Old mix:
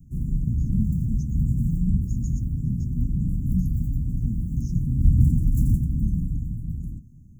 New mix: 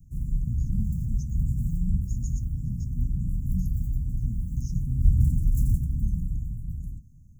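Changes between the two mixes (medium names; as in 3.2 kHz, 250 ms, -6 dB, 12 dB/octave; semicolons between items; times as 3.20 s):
speech: send +9.0 dB; master: add peaking EQ 310 Hz -11 dB 2.5 oct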